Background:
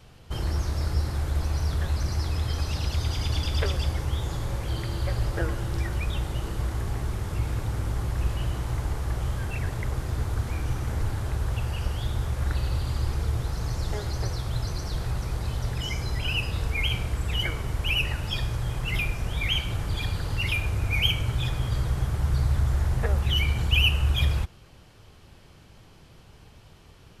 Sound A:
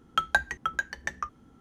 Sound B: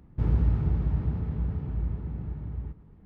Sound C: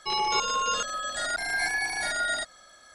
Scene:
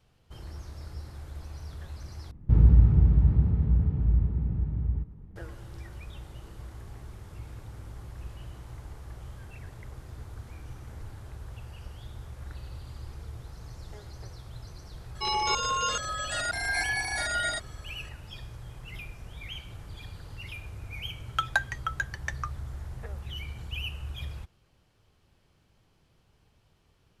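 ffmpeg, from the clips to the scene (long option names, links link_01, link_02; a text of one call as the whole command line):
ffmpeg -i bed.wav -i cue0.wav -i cue1.wav -i cue2.wav -filter_complex "[0:a]volume=-14.5dB[link_01];[2:a]lowshelf=frequency=210:gain=10[link_02];[3:a]acontrast=55[link_03];[1:a]lowshelf=frequency=370:gain=-11[link_04];[link_01]asplit=2[link_05][link_06];[link_05]atrim=end=2.314[link_07];[link_02]atrim=end=3.05,asetpts=PTS-STARTPTS,volume=-2.5dB[link_08];[link_06]atrim=start=5.356[link_09];[link_03]atrim=end=2.94,asetpts=PTS-STARTPTS,volume=-7.5dB,afade=type=in:duration=0.004:curve=hsin,afade=type=out:start_time=2.936:duration=0.004:curve=hsin,adelay=15150[link_10];[link_04]atrim=end=1.6,asetpts=PTS-STARTPTS,volume=-1.5dB,afade=type=in:duration=0.004:curve=hsin,afade=type=out:start_time=1.596:duration=0.004:curve=hsin,adelay=21210[link_11];[link_07][link_08]acrossfade=duration=0.004:curve1=hsin:curve2=hsin[link_12];[link_12][link_09]acrossfade=duration=0.004:curve1=hsin:curve2=hsin[link_13];[link_13][link_10][link_11]amix=inputs=3:normalize=0" out.wav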